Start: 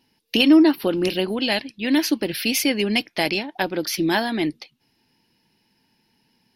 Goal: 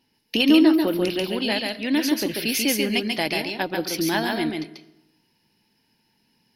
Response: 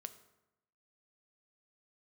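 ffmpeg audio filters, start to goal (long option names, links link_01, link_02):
-filter_complex "[0:a]asplit=2[link_01][link_02];[1:a]atrim=start_sample=2205,highshelf=frequency=6200:gain=6.5,adelay=139[link_03];[link_02][link_03]afir=irnorm=-1:irlink=0,volume=0.5dB[link_04];[link_01][link_04]amix=inputs=2:normalize=0,volume=-3dB"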